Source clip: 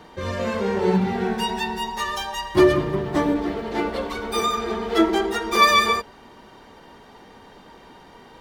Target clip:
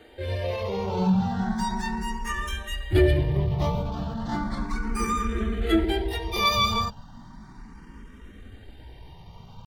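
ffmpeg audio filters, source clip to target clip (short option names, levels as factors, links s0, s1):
-filter_complex "[0:a]asubboost=boost=11:cutoff=140,acontrast=28,atempo=0.87,asplit=2[s0][s1];[s1]afreqshift=0.35[s2];[s0][s2]amix=inputs=2:normalize=1,volume=0.473"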